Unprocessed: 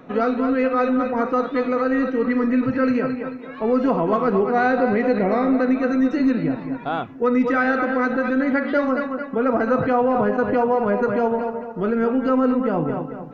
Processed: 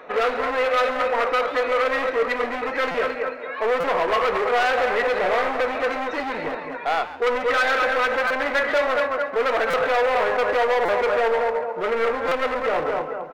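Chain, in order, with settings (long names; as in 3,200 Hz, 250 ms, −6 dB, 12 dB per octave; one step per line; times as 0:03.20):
low-shelf EQ 130 Hz −10.5 dB
hard clipping −23.5 dBFS, distortion −7 dB
octave-band graphic EQ 125/250/500/1,000/2,000/4,000 Hz −12/−11/+8/+4/+8/+3 dB
echo with shifted repeats 137 ms, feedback 33%, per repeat +77 Hz, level −15.5 dB
on a send at −13 dB: convolution reverb RT60 0.20 s, pre-delay 5 ms
on the sum: buffer that repeats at 0:02.91/0:03.80/0:08.27/0:09.70/0:10.85/0:12.28, samples 256, times 5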